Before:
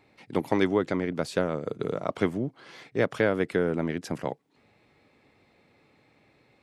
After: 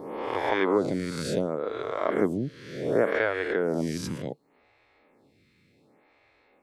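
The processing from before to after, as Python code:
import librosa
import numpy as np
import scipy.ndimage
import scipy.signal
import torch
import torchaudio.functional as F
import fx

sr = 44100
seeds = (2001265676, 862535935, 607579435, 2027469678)

y = fx.spec_swells(x, sr, rise_s=1.17)
y = fx.stagger_phaser(y, sr, hz=0.68)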